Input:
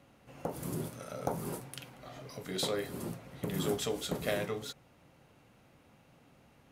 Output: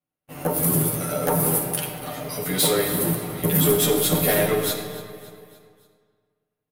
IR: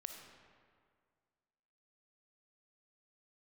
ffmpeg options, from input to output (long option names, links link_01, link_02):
-filter_complex "[0:a]asplit=2[link_01][link_02];[link_02]aeval=exprs='0.133*sin(PI/2*2.51*val(0)/0.133)':channel_layout=same,volume=-7dB[link_03];[link_01][link_03]amix=inputs=2:normalize=0,agate=range=-42dB:threshold=-45dB:ratio=16:detection=peak,aexciter=amount=6.2:drive=3:freq=9200,asplit=2[link_04][link_05];[1:a]atrim=start_sample=2205,adelay=12[link_06];[link_05][link_06]afir=irnorm=-1:irlink=0,volume=8dB[link_07];[link_04][link_07]amix=inputs=2:normalize=0,asoftclip=type=tanh:threshold=-12dB,aecho=1:1:6.6:0.43,aecho=1:1:285|570|855|1140:0.133|0.0653|0.032|0.0157"